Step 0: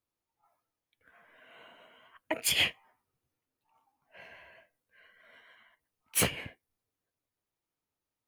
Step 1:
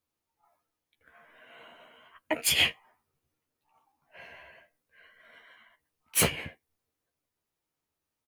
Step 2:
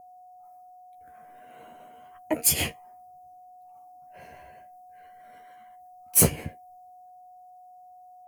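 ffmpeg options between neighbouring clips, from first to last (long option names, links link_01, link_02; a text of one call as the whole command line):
ffmpeg -i in.wav -filter_complex "[0:a]asplit=2[link_01][link_02];[link_02]adelay=13,volume=-6dB[link_03];[link_01][link_03]amix=inputs=2:normalize=0,volume=2dB" out.wav
ffmpeg -i in.wav -af "aexciter=amount=3.8:drive=8.8:freq=4900,aeval=exprs='val(0)+0.00355*sin(2*PI*730*n/s)':channel_layout=same,tiltshelf=frequency=870:gain=8.5" out.wav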